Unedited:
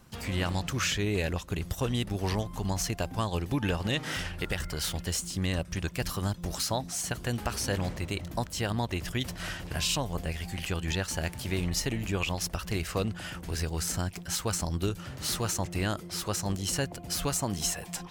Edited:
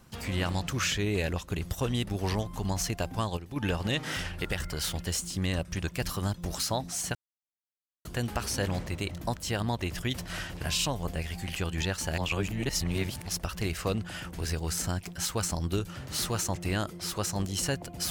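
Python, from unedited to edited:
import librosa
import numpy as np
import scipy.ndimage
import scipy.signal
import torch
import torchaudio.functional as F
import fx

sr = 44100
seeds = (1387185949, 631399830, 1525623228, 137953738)

y = fx.edit(x, sr, fx.fade_down_up(start_s=3.09, length_s=0.75, db=-10.0, fade_s=0.28, curve='log'),
    fx.insert_silence(at_s=7.15, length_s=0.9),
    fx.reverse_span(start_s=11.28, length_s=1.09), tone=tone)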